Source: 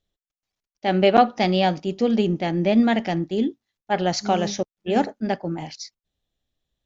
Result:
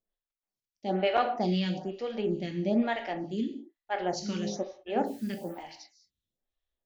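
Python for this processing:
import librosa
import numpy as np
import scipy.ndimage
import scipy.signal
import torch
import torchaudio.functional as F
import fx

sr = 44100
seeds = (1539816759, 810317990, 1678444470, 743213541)

y = fx.dmg_noise_colour(x, sr, seeds[0], colour='white', level_db=-50.0, at=(5.05, 5.62), fade=0.02)
y = fx.rev_gated(y, sr, seeds[1], gate_ms=230, shape='falling', drr_db=4.5)
y = fx.stagger_phaser(y, sr, hz=1.1)
y = y * librosa.db_to_amplitude(-7.5)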